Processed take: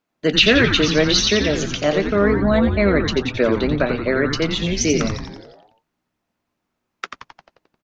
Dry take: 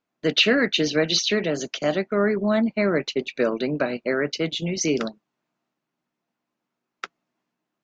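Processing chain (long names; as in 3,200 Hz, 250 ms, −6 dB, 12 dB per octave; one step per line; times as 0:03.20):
echo with shifted repeats 88 ms, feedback 59%, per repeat −140 Hz, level −6 dB
level +4 dB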